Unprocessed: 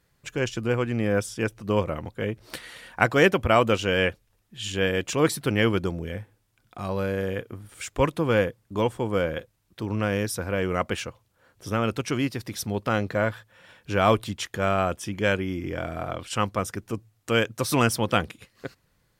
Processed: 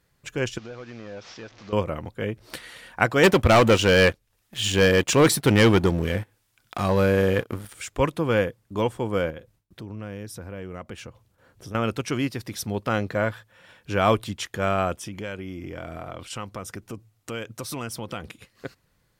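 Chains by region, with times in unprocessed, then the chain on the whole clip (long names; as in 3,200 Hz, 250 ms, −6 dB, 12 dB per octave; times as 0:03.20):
0:00.58–0:01.73: linear delta modulator 32 kbit/s, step −39.5 dBFS + low-shelf EQ 340 Hz −10.5 dB + downward compressor 2.5 to 1, threshold −39 dBFS
0:03.23–0:07.73: leveller curve on the samples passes 2 + hard clipping −11.5 dBFS + one half of a high-frequency compander encoder only
0:09.30–0:11.75: noise gate with hold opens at −57 dBFS, closes at −62 dBFS + low-shelf EQ 490 Hz +6.5 dB + downward compressor 2.5 to 1, threshold −40 dBFS
0:14.92–0:18.25: notch filter 1,700 Hz, Q 18 + downward compressor 3 to 1, threshold −32 dBFS
whole clip: no processing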